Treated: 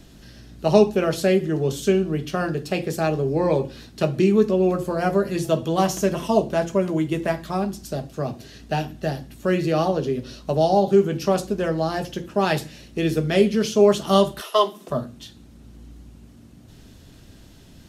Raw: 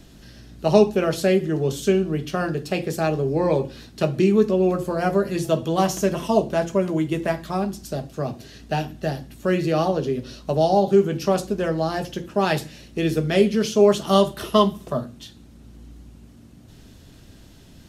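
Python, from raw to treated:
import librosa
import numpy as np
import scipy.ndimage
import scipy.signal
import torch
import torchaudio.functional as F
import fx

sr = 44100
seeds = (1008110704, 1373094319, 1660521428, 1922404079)

y = fx.highpass(x, sr, hz=fx.line((14.4, 730.0), (14.89, 180.0)), slope=24, at=(14.4, 14.89), fade=0.02)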